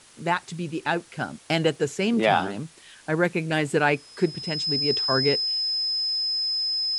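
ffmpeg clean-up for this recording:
ffmpeg -i in.wav -af "adeclick=threshold=4,bandreject=frequency=5100:width=30,afwtdn=0.0032" out.wav

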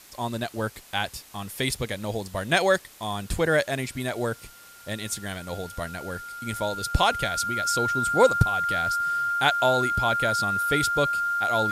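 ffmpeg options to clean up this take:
ffmpeg -i in.wav -af "bandreject=frequency=1400:width=30,afftdn=noise_reduction=23:noise_floor=-48" out.wav

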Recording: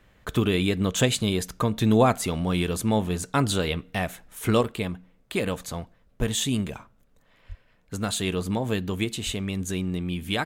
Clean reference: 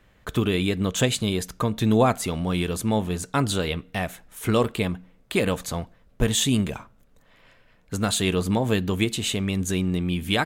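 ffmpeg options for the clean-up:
ffmpeg -i in.wav -filter_complex "[0:a]asplit=3[link_01][link_02][link_03];[link_01]afade=type=out:start_time=7.48:duration=0.02[link_04];[link_02]highpass=frequency=140:width=0.5412,highpass=frequency=140:width=1.3066,afade=type=in:start_time=7.48:duration=0.02,afade=type=out:start_time=7.6:duration=0.02[link_05];[link_03]afade=type=in:start_time=7.6:duration=0.02[link_06];[link_04][link_05][link_06]amix=inputs=3:normalize=0,asplit=3[link_07][link_08][link_09];[link_07]afade=type=out:start_time=9.25:duration=0.02[link_10];[link_08]highpass=frequency=140:width=0.5412,highpass=frequency=140:width=1.3066,afade=type=in:start_time=9.25:duration=0.02,afade=type=out:start_time=9.37:duration=0.02[link_11];[link_09]afade=type=in:start_time=9.37:duration=0.02[link_12];[link_10][link_11][link_12]amix=inputs=3:normalize=0,asetnsamples=nb_out_samples=441:pad=0,asendcmd='4.61 volume volume 4dB',volume=0dB" out.wav

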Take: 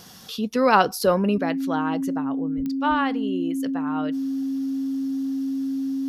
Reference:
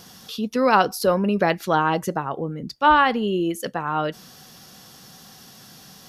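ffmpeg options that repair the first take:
ffmpeg -i in.wav -filter_complex "[0:a]adeclick=threshold=4,bandreject=frequency=270:width=30,asplit=3[link_01][link_02][link_03];[link_01]afade=type=out:start_time=2.56:duration=0.02[link_04];[link_02]highpass=frequency=140:width=0.5412,highpass=frequency=140:width=1.3066,afade=type=in:start_time=2.56:duration=0.02,afade=type=out:start_time=2.68:duration=0.02[link_05];[link_03]afade=type=in:start_time=2.68:duration=0.02[link_06];[link_04][link_05][link_06]amix=inputs=3:normalize=0,asetnsamples=nb_out_samples=441:pad=0,asendcmd='1.38 volume volume 7.5dB',volume=0dB" out.wav

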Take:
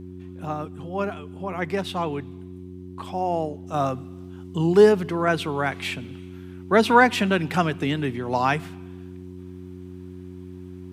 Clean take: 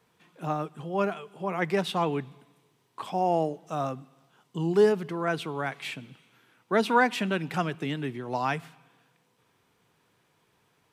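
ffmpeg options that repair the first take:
ffmpeg -i in.wav -af "bandreject=frequency=91.1:width_type=h:width=4,bandreject=frequency=182.2:width_type=h:width=4,bandreject=frequency=273.3:width_type=h:width=4,bandreject=frequency=364.4:width_type=h:width=4,asetnsamples=nb_out_samples=441:pad=0,asendcmd='3.74 volume volume -6.5dB',volume=0dB" out.wav

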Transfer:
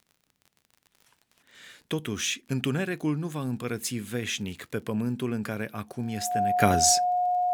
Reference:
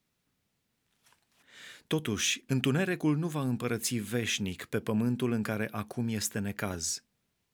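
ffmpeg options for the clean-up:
ffmpeg -i in.wav -af "adeclick=threshold=4,bandreject=frequency=720:width=30,asetnsamples=nb_out_samples=441:pad=0,asendcmd='6.6 volume volume -11.5dB',volume=0dB" out.wav

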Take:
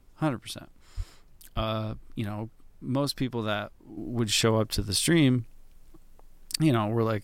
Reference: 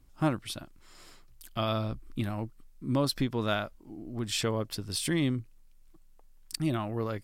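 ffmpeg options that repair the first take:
ffmpeg -i in.wav -filter_complex "[0:a]asplit=3[link_01][link_02][link_03];[link_01]afade=type=out:start_time=0.96:duration=0.02[link_04];[link_02]highpass=frequency=140:width=0.5412,highpass=frequency=140:width=1.3066,afade=type=in:start_time=0.96:duration=0.02,afade=type=out:start_time=1.08:duration=0.02[link_05];[link_03]afade=type=in:start_time=1.08:duration=0.02[link_06];[link_04][link_05][link_06]amix=inputs=3:normalize=0,asplit=3[link_07][link_08][link_09];[link_07]afade=type=out:start_time=1.55:duration=0.02[link_10];[link_08]highpass=frequency=140:width=0.5412,highpass=frequency=140:width=1.3066,afade=type=in:start_time=1.55:duration=0.02,afade=type=out:start_time=1.67:duration=0.02[link_11];[link_09]afade=type=in:start_time=1.67:duration=0.02[link_12];[link_10][link_11][link_12]amix=inputs=3:normalize=0,asplit=3[link_13][link_14][link_15];[link_13]afade=type=out:start_time=4.75:duration=0.02[link_16];[link_14]highpass=frequency=140:width=0.5412,highpass=frequency=140:width=1.3066,afade=type=in:start_time=4.75:duration=0.02,afade=type=out:start_time=4.87:duration=0.02[link_17];[link_15]afade=type=in:start_time=4.87:duration=0.02[link_18];[link_16][link_17][link_18]amix=inputs=3:normalize=0,agate=range=-21dB:threshold=-45dB,asetnsamples=nb_out_samples=441:pad=0,asendcmd='3.97 volume volume -6.5dB',volume=0dB" out.wav

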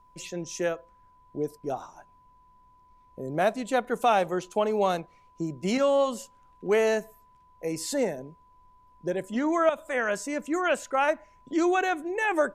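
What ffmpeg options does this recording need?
ffmpeg -i in.wav -af "bandreject=frequency=1000:width=30,agate=range=-21dB:threshold=-51dB" out.wav

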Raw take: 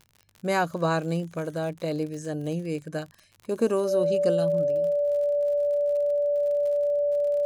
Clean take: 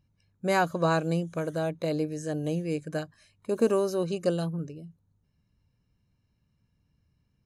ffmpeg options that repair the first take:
ffmpeg -i in.wav -af "adeclick=threshold=4,bandreject=frequency=580:width=30,asetnsamples=nb_out_samples=441:pad=0,asendcmd='4.92 volume volume -5.5dB',volume=0dB" out.wav

